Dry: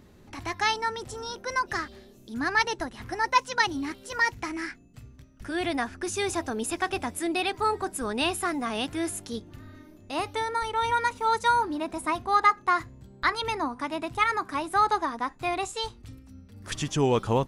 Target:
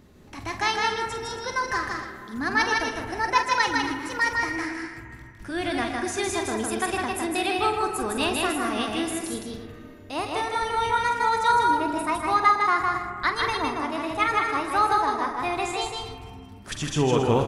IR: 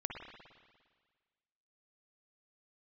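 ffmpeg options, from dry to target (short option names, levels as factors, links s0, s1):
-filter_complex "[0:a]aecho=1:1:157.4|198.3|274.1:0.708|0.282|0.251,asplit=2[s0][s1];[1:a]atrim=start_sample=2205,asetrate=34839,aresample=44100,adelay=46[s2];[s1][s2]afir=irnorm=-1:irlink=0,volume=0.376[s3];[s0][s3]amix=inputs=2:normalize=0"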